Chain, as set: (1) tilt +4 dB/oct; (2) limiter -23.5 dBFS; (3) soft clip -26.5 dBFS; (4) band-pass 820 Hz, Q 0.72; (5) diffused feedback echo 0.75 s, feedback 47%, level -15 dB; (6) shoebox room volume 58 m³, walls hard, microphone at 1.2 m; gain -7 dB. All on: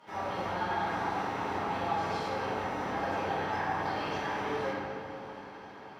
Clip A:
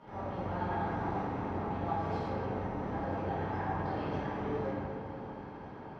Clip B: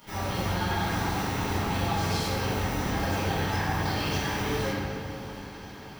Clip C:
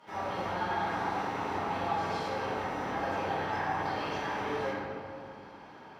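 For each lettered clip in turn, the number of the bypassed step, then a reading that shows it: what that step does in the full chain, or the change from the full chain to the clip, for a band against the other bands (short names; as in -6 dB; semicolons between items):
1, 4 kHz band -10.5 dB; 4, 8 kHz band +10.0 dB; 5, momentary loudness spread change +1 LU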